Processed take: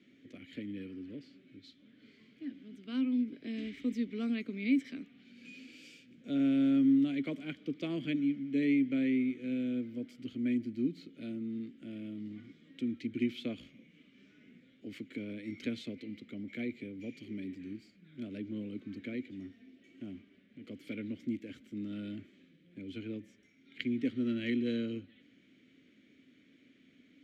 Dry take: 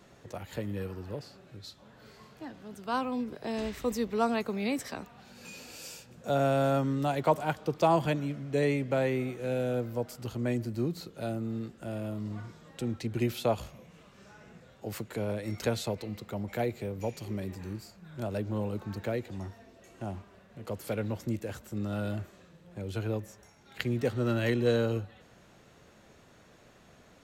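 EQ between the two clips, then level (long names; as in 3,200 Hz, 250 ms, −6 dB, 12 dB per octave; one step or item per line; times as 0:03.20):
formant filter i
+7.5 dB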